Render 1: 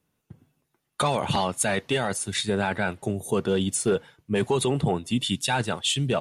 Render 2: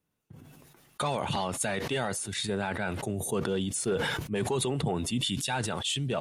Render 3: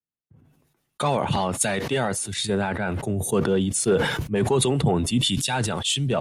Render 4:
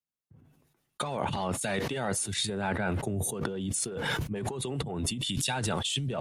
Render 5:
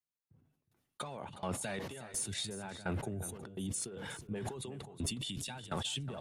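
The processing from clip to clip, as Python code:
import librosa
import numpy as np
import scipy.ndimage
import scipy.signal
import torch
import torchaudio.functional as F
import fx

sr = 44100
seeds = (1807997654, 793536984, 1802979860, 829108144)

y1 = fx.sustainer(x, sr, db_per_s=24.0)
y1 = y1 * 10.0 ** (-6.5 / 20.0)
y2 = fx.low_shelf(y1, sr, hz=450.0, db=3.0)
y2 = fx.band_widen(y2, sr, depth_pct=70)
y2 = y2 * 10.0 ** (6.0 / 20.0)
y3 = fx.over_compress(y2, sr, threshold_db=-26.0, ratio=-1.0)
y3 = y3 * 10.0 ** (-5.5 / 20.0)
y4 = fx.tremolo_shape(y3, sr, shape='saw_down', hz=1.4, depth_pct=95)
y4 = 10.0 ** (-20.0 / 20.0) * np.tanh(y4 / 10.0 ** (-20.0 / 20.0))
y4 = y4 + 10.0 ** (-13.5 / 20.0) * np.pad(y4, (int(364 * sr / 1000.0), 0))[:len(y4)]
y4 = y4 * 10.0 ** (-4.0 / 20.0)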